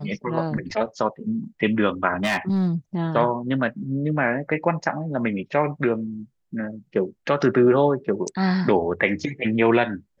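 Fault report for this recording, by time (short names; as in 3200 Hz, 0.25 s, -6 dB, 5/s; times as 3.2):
2.24–2.68 clipped -17.5 dBFS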